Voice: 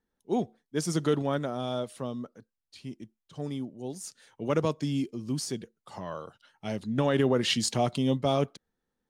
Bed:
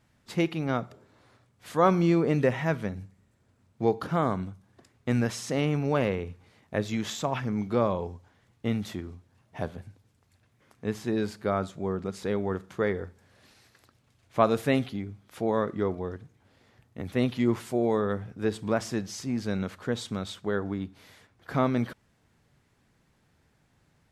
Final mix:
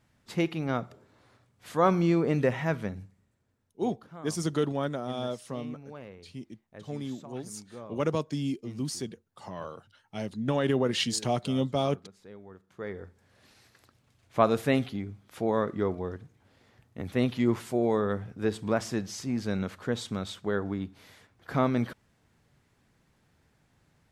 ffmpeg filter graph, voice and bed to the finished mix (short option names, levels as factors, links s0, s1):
-filter_complex "[0:a]adelay=3500,volume=0.841[s0];[1:a]volume=7.08,afade=t=out:st=2.85:d=0.94:silence=0.133352,afade=t=in:st=12.64:d=0.96:silence=0.11885[s1];[s0][s1]amix=inputs=2:normalize=0"